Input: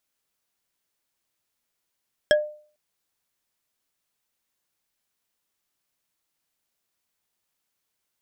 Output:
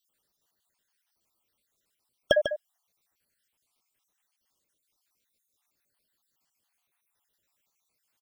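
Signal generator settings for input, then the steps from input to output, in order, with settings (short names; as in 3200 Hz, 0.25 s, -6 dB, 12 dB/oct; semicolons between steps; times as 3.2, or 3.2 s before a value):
wood hit bar, lowest mode 602 Hz, decay 0.45 s, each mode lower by 3.5 dB, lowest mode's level -12 dB
random spectral dropouts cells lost 63%; in parallel at -2.5 dB: limiter -19 dBFS; on the sum: echo 0.147 s -9 dB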